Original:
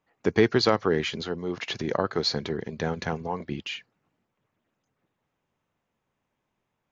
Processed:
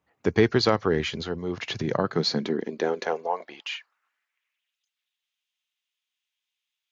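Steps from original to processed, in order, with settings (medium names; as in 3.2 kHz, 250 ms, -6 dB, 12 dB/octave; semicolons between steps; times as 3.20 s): high-pass sweep 64 Hz -> 3.3 kHz, 1.41–4.77 s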